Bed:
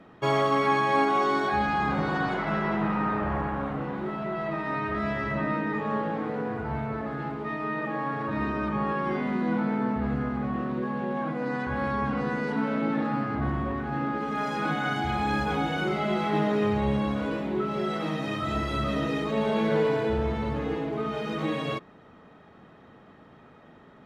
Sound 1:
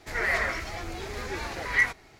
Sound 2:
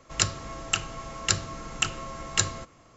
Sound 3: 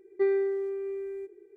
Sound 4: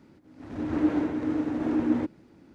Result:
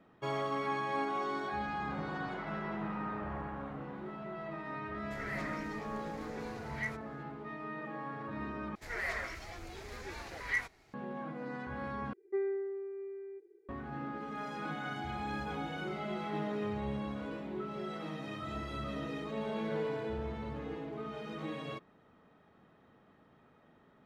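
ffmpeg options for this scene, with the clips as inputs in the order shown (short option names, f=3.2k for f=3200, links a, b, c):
-filter_complex "[1:a]asplit=2[a][b];[0:a]volume=-11.5dB[c];[3:a]highpass=120,lowpass=2.1k[d];[c]asplit=3[e][f][g];[e]atrim=end=8.754[h];[b]atrim=end=2.19,asetpts=PTS-STARTPTS,volume=-10.5dB[i];[f]atrim=start=10.936:end=12.134[j];[d]atrim=end=1.56,asetpts=PTS-STARTPTS,volume=-8.5dB[k];[g]atrim=start=13.686[l];[a]atrim=end=2.19,asetpts=PTS-STARTPTS,volume=-16dB,afade=t=in:d=0.004:c=hsin,afade=t=out:st=2.186:d=0.004:c=hsin,adelay=5040[m];[h][i]acrossfade=d=0.004:c1=hsin:c2=hsin[n];[n][j]acrossfade=d=0.004:c1=hsin:c2=hsin[o];[o][k]acrossfade=d=0.004:c1=hsin:c2=hsin[p];[p][l]acrossfade=d=0.004:c1=hsin:c2=hsin[q];[q][m]amix=inputs=2:normalize=0"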